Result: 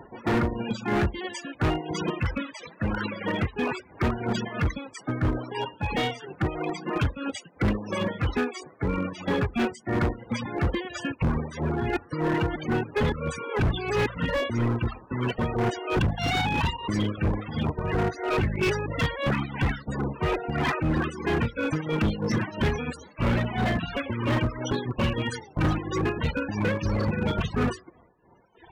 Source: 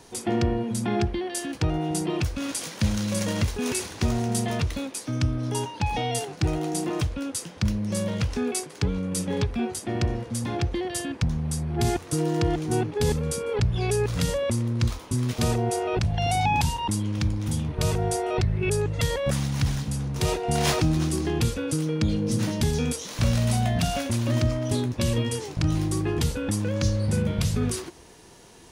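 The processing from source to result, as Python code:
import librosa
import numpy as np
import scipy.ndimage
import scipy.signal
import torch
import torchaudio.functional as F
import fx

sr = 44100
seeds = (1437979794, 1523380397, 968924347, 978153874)

p1 = fx.spec_flatten(x, sr, power=0.48)
p2 = fx.sample_hold(p1, sr, seeds[0], rate_hz=6700.0, jitter_pct=0)
p3 = p1 + (p2 * 10.0 ** (-5.0 / 20.0))
p4 = fx.air_absorb(p3, sr, metres=65.0)
p5 = fx.rev_schroeder(p4, sr, rt60_s=1.2, comb_ms=27, drr_db=19.5)
p6 = fx.dereverb_blind(p5, sr, rt60_s=1.8)
p7 = p6 * (1.0 - 0.72 / 2.0 + 0.72 / 2.0 * np.cos(2.0 * np.pi * 3.0 * (np.arange(len(p6)) / sr)))
p8 = fx.spec_topn(p7, sr, count=32)
p9 = fx.highpass(p8, sr, hz=45.0, slope=6)
p10 = np.clip(10.0 ** (27.0 / 20.0) * p9, -1.0, 1.0) / 10.0 ** (27.0 / 20.0)
p11 = fx.dynamic_eq(p10, sr, hz=680.0, q=1.7, threshold_db=-49.0, ratio=4.0, max_db=-5)
y = p11 * 10.0 ** (7.5 / 20.0)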